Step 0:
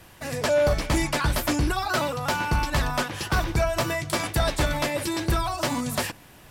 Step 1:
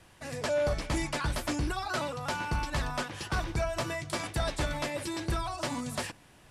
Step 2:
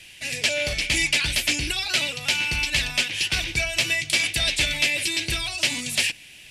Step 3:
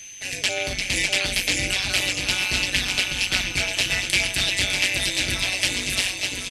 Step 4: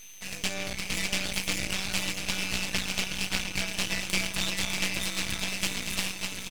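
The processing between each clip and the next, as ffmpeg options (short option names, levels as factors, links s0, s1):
-af "lowpass=f=11000:w=0.5412,lowpass=f=11000:w=1.3066,volume=0.422"
-af "highshelf=f=1700:t=q:w=3:g=13.5"
-af "aecho=1:1:600|1050|1388|1641|1830:0.631|0.398|0.251|0.158|0.1,tremolo=f=190:d=0.889,aeval=exprs='val(0)+0.00891*sin(2*PI*6200*n/s)':c=same,volume=1.33"
-af "aeval=exprs='max(val(0),0)':c=same,volume=0.668"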